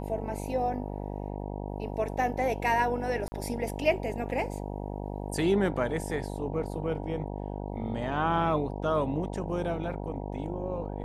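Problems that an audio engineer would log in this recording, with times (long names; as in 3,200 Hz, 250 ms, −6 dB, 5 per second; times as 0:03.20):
mains buzz 50 Hz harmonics 19 −36 dBFS
0:03.28–0:03.32: drop-out 40 ms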